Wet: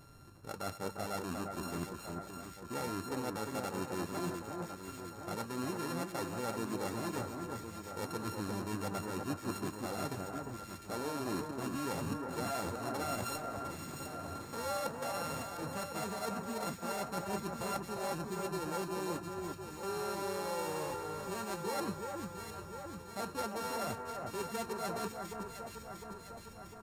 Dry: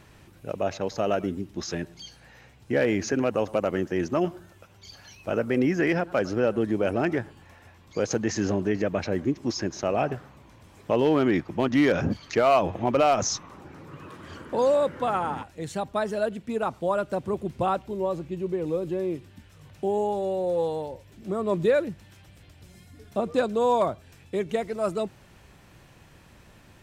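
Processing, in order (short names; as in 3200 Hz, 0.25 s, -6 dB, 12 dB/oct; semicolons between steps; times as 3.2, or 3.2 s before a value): sample sorter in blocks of 32 samples; bell 2800 Hz -6.5 dB 0.84 oct; notch 2900 Hz, Q 16; reverse; compressor 6:1, threshold -32 dBFS, peak gain reduction 14.5 dB; reverse; flange 0.33 Hz, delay 6.9 ms, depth 6.2 ms, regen -54%; on a send: echo with dull and thin repeats by turns 0.352 s, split 1800 Hz, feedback 77%, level -4 dB; on the sum: downsampling 32000 Hz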